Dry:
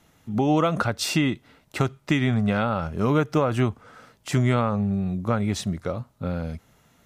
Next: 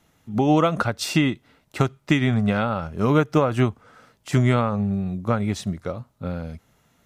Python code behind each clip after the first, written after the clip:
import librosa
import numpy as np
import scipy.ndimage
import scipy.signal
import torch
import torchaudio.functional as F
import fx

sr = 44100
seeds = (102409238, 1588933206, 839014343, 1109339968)

y = fx.upward_expand(x, sr, threshold_db=-30.0, expansion=1.5)
y = y * librosa.db_to_amplitude(3.5)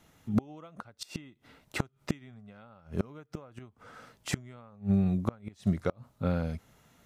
y = fx.gate_flip(x, sr, shuts_db=-15.0, range_db=-30)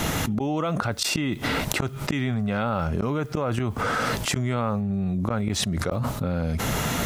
y = fx.env_flatten(x, sr, amount_pct=100)
y = y * librosa.db_to_amplitude(-3.5)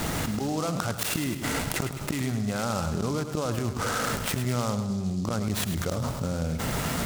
y = fx.echo_feedback(x, sr, ms=105, feedback_pct=55, wet_db=-9.5)
y = fx.noise_mod_delay(y, sr, seeds[0], noise_hz=5200.0, depth_ms=0.056)
y = y * librosa.db_to_amplitude(-3.5)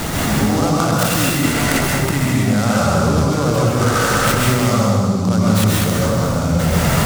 y = x + 10.0 ** (-8.5 / 20.0) * np.pad(x, (int(198 * sr / 1000.0), 0))[:len(x)]
y = fx.rev_plate(y, sr, seeds[1], rt60_s=1.3, hf_ratio=0.55, predelay_ms=115, drr_db=-4.0)
y = y * librosa.db_to_amplitude(7.0)